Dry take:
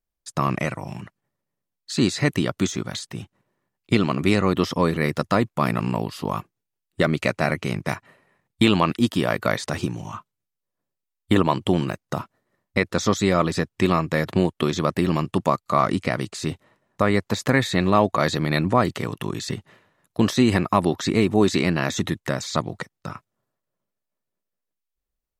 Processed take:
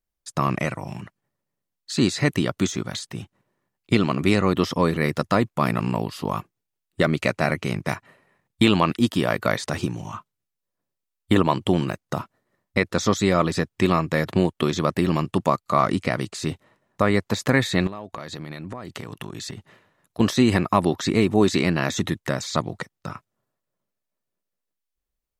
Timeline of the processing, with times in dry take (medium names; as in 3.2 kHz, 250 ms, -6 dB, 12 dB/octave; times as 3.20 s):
17.87–20.20 s: compression 20:1, threshold -29 dBFS